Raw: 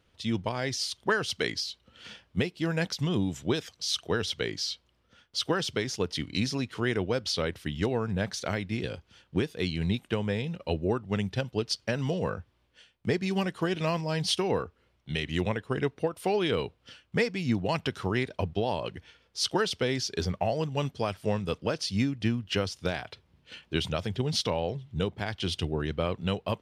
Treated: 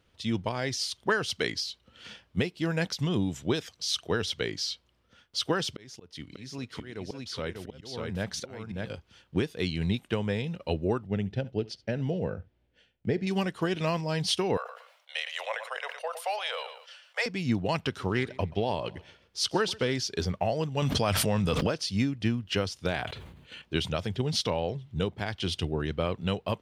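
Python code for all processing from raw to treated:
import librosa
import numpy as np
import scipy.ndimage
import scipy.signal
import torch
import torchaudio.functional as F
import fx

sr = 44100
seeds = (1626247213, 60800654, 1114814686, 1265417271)

y = fx.chain(x, sr, fx.auto_swell(attack_ms=553.0),
    fx.echo_single(ms=594, db=-3.5), at=(5.72, 8.9))
y = fx.chain(y, sr, fx.lowpass(hz=1400.0, slope=6),
    fx.peak_eq(hz=1100.0, db=-13.0, octaves=0.47),
    fx.echo_single(ms=71, db=-21.5), at=(11.07, 13.27))
y = fx.chain(y, sr, fx.steep_highpass(hz=530.0, slope=72),
    fx.echo_feedback(ms=114, feedback_pct=22, wet_db=-17.0),
    fx.sustainer(db_per_s=78.0), at=(14.57, 17.26))
y = fx.chain(y, sr, fx.echo_feedback(ms=130, feedback_pct=40, wet_db=-21.5),
    fx.doppler_dist(depth_ms=0.11), at=(17.83, 19.94))
y = fx.chain(y, sr, fx.peak_eq(hz=380.0, db=-6.0, octaves=0.45),
    fx.env_flatten(amount_pct=100), at=(20.82, 21.67))
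y = fx.chain(y, sr, fx.peak_eq(hz=5300.0, db=-12.0, octaves=0.25),
    fx.sustainer(db_per_s=50.0), at=(22.87, 23.62))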